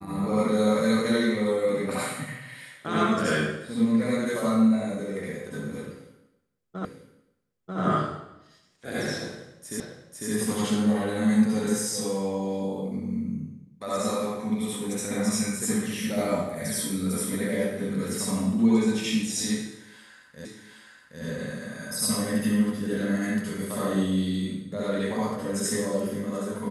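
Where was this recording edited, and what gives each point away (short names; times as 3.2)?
6.85 repeat of the last 0.94 s
9.8 repeat of the last 0.5 s
20.45 repeat of the last 0.77 s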